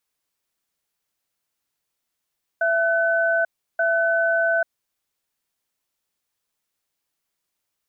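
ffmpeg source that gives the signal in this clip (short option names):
-f lavfi -i "aevalsrc='0.1*(sin(2*PI*667*t)+sin(2*PI*1510*t))*clip(min(mod(t,1.18),0.84-mod(t,1.18))/0.005,0,1)':d=2.13:s=44100"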